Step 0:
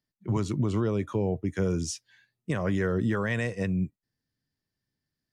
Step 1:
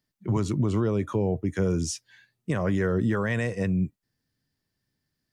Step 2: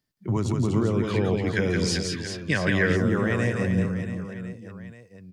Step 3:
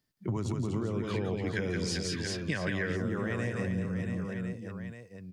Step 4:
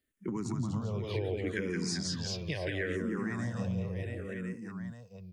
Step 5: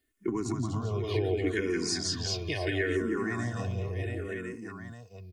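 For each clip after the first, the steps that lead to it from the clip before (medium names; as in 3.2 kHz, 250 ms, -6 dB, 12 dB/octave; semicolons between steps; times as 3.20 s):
dynamic bell 3.5 kHz, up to -3 dB, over -49 dBFS, Q 0.72; in parallel at -1.5 dB: peak limiter -29 dBFS, peak gain reduction 11 dB
reverse bouncing-ball echo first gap 170 ms, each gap 1.3×, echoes 5; time-frequency box 1.04–2.97 s, 1.5–5.2 kHz +12 dB
compression, threshold -29 dBFS, peak gain reduction 11.5 dB
dynamic bell 1.4 kHz, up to -4 dB, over -48 dBFS, Q 2.2; barber-pole phaser -0.71 Hz; trim +1 dB
comb 2.8 ms, depth 71%; trim +3 dB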